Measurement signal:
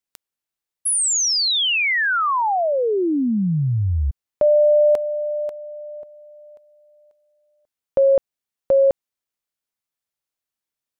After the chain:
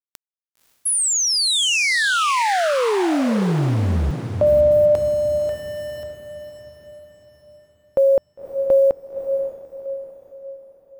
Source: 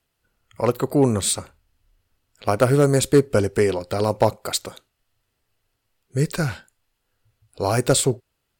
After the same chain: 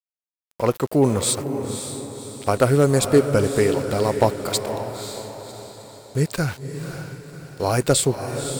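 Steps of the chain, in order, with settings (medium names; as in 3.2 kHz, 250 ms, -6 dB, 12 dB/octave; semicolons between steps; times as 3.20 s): small samples zeroed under -34.5 dBFS; echo that smears into a reverb 546 ms, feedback 46%, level -8 dB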